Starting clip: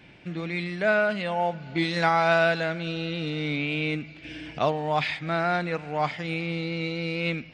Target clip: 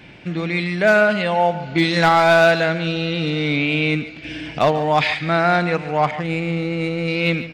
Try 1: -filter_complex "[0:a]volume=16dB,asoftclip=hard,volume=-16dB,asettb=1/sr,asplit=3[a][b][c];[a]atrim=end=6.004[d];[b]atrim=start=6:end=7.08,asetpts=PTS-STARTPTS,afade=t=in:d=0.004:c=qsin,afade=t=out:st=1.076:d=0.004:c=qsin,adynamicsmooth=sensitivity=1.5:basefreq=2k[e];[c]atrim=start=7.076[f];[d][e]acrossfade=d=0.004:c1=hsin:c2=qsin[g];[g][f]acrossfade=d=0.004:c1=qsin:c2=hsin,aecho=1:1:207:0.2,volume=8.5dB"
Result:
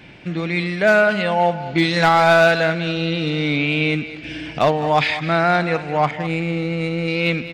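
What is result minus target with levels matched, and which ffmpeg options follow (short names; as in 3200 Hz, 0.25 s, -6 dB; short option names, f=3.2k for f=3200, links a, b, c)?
echo 65 ms late
-filter_complex "[0:a]volume=16dB,asoftclip=hard,volume=-16dB,asettb=1/sr,asplit=3[a][b][c];[a]atrim=end=6.004[d];[b]atrim=start=6:end=7.08,asetpts=PTS-STARTPTS,afade=t=in:d=0.004:c=qsin,afade=t=out:st=1.076:d=0.004:c=qsin,adynamicsmooth=sensitivity=1.5:basefreq=2k[e];[c]atrim=start=7.076[f];[d][e]acrossfade=d=0.004:c1=hsin:c2=qsin[g];[g][f]acrossfade=d=0.004:c1=qsin:c2=hsin,aecho=1:1:142:0.2,volume=8.5dB"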